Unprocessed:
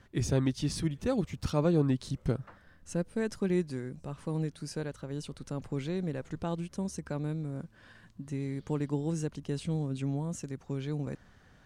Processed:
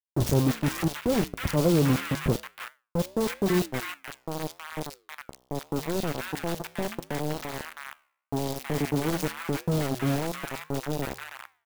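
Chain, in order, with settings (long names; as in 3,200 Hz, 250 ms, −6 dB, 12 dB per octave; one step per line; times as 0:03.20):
0:03.80–0:05.26: high-pass filter 240 Hz 12 dB per octave
bit reduction 5 bits
flanger 0.83 Hz, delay 6.8 ms, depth 9.4 ms, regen −85%
three-band delay without the direct sound lows, highs, mids 40/320 ms, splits 1,100/3,300 Hz
converter with an unsteady clock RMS 0.026 ms
level +9 dB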